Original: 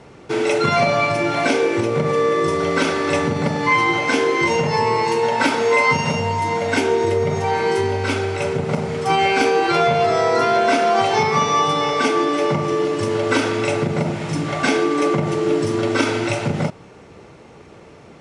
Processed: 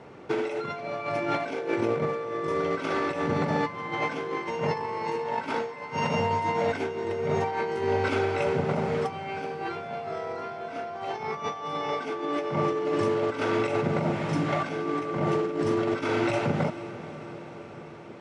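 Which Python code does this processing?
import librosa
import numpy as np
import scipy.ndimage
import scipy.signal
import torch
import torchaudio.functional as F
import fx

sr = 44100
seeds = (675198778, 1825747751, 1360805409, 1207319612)

y = fx.highpass(x, sr, hz=130.0, slope=6)
y = fx.low_shelf(y, sr, hz=430.0, db=-3.0)
y = fx.over_compress(y, sr, threshold_db=-23.0, ratio=-0.5)
y = fx.lowpass(y, sr, hz=1800.0, slope=6)
y = fx.echo_diffused(y, sr, ms=464, feedback_pct=67, wet_db=-15)
y = y * librosa.db_to_amplitude(-4.0)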